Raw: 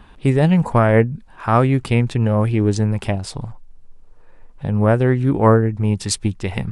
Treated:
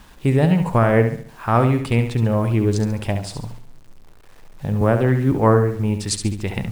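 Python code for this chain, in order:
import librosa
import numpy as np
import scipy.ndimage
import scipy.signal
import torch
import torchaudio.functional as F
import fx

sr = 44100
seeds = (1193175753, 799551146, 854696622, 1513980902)

p1 = fx.quant_dither(x, sr, seeds[0], bits=8, dither='none')
p2 = p1 + fx.room_flutter(p1, sr, wall_m=11.9, rt60_s=0.51, dry=0)
p3 = fx.band_squash(p2, sr, depth_pct=40, at=(4.81, 5.32))
y = p3 * librosa.db_to_amplitude(-2.0)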